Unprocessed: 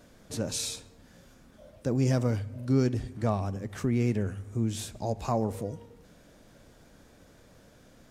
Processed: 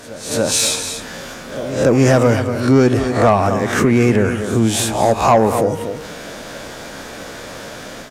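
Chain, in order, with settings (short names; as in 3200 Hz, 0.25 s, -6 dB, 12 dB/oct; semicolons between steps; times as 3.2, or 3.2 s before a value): spectral swells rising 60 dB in 0.36 s; dynamic EQ 4500 Hz, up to -7 dB, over -54 dBFS, Q 0.86; AGC gain up to 9 dB; on a send: echo 0.241 s -13 dB; on the sum: overdrive pedal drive 16 dB, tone 5700 Hz, clips at -4.5 dBFS; pre-echo 0.288 s -19.5 dB; in parallel at +2.5 dB: compressor, threshold -27 dBFS, peak gain reduction 15.5 dB; on the sum: gain +1.5 dB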